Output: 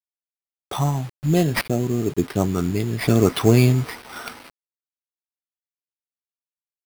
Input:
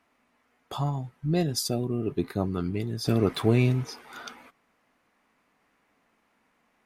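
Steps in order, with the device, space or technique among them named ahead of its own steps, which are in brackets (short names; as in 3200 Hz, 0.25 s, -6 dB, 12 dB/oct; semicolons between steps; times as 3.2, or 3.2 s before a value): 1.61–2.28 air absorption 420 m; early 8-bit sampler (sample-rate reducer 7000 Hz, jitter 0%; bit-crush 8-bit); gain +7 dB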